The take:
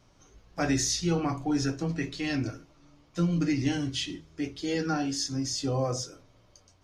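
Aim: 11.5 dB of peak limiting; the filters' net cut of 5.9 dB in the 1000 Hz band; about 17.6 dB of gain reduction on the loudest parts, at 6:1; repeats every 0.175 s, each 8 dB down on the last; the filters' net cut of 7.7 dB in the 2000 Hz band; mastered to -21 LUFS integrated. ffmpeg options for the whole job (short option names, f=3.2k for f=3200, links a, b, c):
-af "equalizer=f=1k:t=o:g=-7,equalizer=f=2k:t=o:g=-8,acompressor=threshold=-43dB:ratio=6,alimiter=level_in=18.5dB:limit=-24dB:level=0:latency=1,volume=-18.5dB,aecho=1:1:175|350|525|700|875:0.398|0.159|0.0637|0.0255|0.0102,volume=29dB"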